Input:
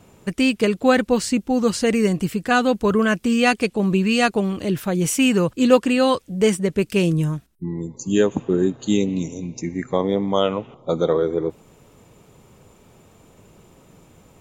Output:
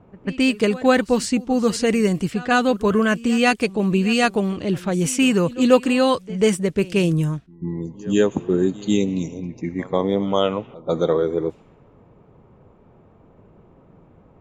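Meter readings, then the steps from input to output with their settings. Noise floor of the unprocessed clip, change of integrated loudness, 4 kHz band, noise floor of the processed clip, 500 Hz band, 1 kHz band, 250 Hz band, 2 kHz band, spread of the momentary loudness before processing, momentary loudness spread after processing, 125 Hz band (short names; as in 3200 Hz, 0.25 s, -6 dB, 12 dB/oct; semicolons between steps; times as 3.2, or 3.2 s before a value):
-53 dBFS, 0.0 dB, 0.0 dB, -52 dBFS, 0.0 dB, 0.0 dB, 0.0 dB, 0.0 dB, 10 LU, 10 LU, 0.0 dB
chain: pre-echo 0.142 s -19.5 dB; low-pass opened by the level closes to 1200 Hz, open at -16 dBFS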